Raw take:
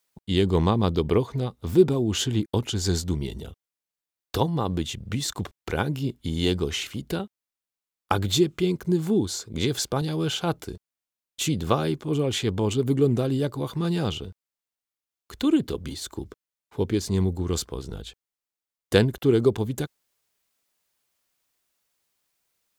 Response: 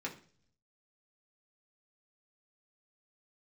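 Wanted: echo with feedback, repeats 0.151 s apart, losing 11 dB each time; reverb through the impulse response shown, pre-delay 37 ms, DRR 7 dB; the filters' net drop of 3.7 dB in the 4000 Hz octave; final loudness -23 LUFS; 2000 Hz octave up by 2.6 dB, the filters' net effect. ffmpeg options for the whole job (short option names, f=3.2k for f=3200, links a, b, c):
-filter_complex "[0:a]equalizer=f=2k:t=o:g=5.5,equalizer=f=4k:t=o:g=-7,aecho=1:1:151|302|453:0.282|0.0789|0.0221,asplit=2[a][b];[1:a]atrim=start_sample=2205,adelay=37[c];[b][c]afir=irnorm=-1:irlink=0,volume=-8.5dB[d];[a][d]amix=inputs=2:normalize=0,volume=1.5dB"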